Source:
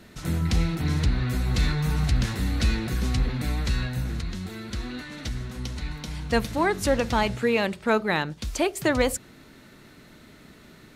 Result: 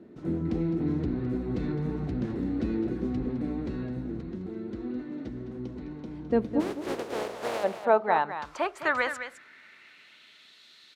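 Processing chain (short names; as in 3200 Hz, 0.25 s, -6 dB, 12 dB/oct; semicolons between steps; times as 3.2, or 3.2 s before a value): 6.59–7.63 spectral contrast lowered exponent 0.11; echo 0.21 s -10.5 dB; band-pass sweep 330 Hz -> 3800 Hz, 6.66–10.62; gain +6.5 dB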